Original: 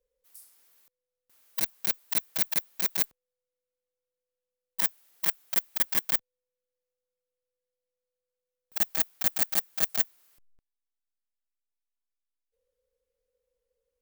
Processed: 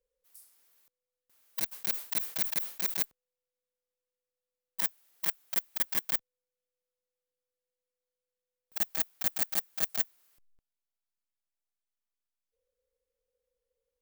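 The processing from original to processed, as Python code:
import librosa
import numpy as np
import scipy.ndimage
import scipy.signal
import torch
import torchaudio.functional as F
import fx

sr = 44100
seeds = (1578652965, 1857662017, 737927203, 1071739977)

y = fx.sustainer(x, sr, db_per_s=140.0, at=(1.71, 3.02), fade=0.02)
y = F.gain(torch.from_numpy(y), -4.0).numpy()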